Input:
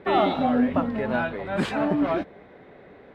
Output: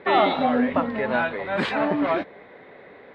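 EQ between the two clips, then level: graphic EQ 125/250/500/1000/2000/4000 Hz +4/+5/+9/+9/+12/+11 dB; -9.0 dB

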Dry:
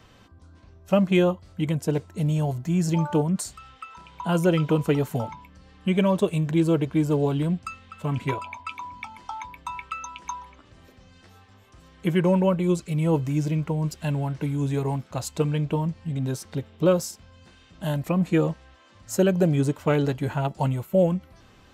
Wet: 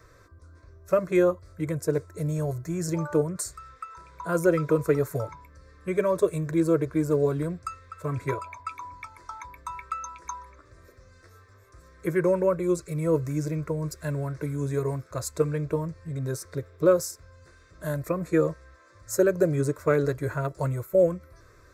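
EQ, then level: fixed phaser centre 810 Hz, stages 6; +2.0 dB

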